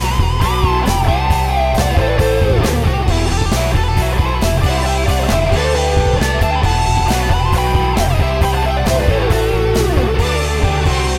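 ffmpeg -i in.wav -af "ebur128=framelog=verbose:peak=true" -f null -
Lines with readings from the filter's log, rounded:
Integrated loudness:
  I:         -14.9 LUFS
  Threshold: -24.9 LUFS
Loudness range:
  LRA:         0.5 LU
  Threshold: -34.9 LUFS
  LRA low:   -15.2 LUFS
  LRA high:  -14.6 LUFS
True peak:
  Peak:       -4.8 dBFS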